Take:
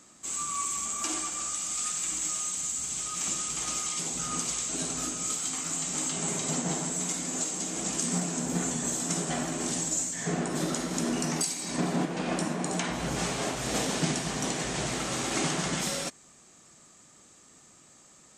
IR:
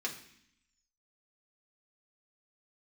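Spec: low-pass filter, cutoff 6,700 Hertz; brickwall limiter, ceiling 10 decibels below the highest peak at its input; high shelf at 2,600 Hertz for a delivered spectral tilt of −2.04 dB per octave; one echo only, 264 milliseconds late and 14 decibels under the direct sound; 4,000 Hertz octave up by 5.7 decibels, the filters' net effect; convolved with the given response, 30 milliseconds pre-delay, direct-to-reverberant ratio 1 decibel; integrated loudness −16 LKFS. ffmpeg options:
-filter_complex "[0:a]lowpass=6700,highshelf=frequency=2600:gain=3.5,equalizer=frequency=4000:width_type=o:gain=5,alimiter=limit=-23.5dB:level=0:latency=1,aecho=1:1:264:0.2,asplit=2[link_01][link_02];[1:a]atrim=start_sample=2205,adelay=30[link_03];[link_02][link_03]afir=irnorm=-1:irlink=0,volume=-4dB[link_04];[link_01][link_04]amix=inputs=2:normalize=0,volume=13dB"

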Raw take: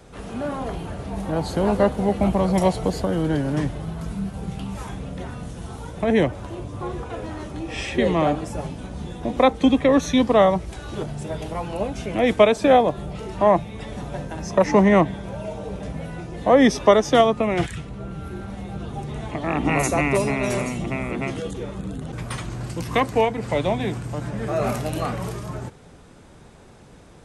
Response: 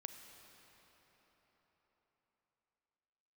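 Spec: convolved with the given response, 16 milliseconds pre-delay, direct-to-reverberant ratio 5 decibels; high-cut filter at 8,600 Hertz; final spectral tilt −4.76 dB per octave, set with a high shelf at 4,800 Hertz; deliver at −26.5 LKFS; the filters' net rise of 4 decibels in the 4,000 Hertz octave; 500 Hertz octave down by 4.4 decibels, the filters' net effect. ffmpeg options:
-filter_complex "[0:a]lowpass=8600,equalizer=frequency=500:width_type=o:gain=-5.5,equalizer=frequency=4000:width_type=o:gain=9,highshelf=frequency=4800:gain=-8.5,asplit=2[link_01][link_02];[1:a]atrim=start_sample=2205,adelay=16[link_03];[link_02][link_03]afir=irnorm=-1:irlink=0,volume=-1dB[link_04];[link_01][link_04]amix=inputs=2:normalize=0,volume=-3dB"

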